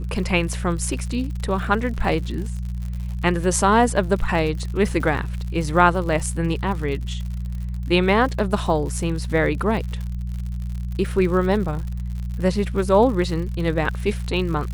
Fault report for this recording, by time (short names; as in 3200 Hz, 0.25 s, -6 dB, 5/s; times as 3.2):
crackle 86/s -30 dBFS
hum 60 Hz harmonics 3 -27 dBFS